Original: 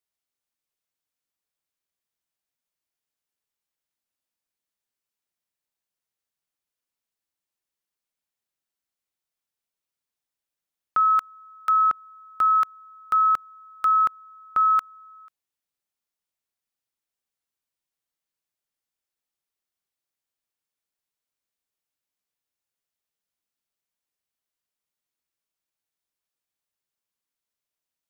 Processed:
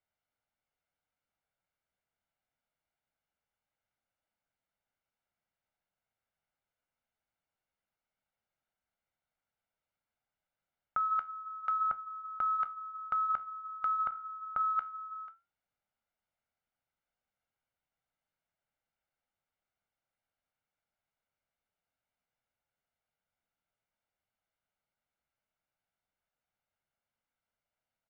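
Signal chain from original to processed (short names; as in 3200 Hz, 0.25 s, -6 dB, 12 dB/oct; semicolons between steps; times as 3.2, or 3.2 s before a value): LPF 2000 Hz 12 dB/oct; comb 1.4 ms, depth 48%; negative-ratio compressor -26 dBFS, ratio -1; flange 0.25 Hz, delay 8.7 ms, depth 8.9 ms, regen -73%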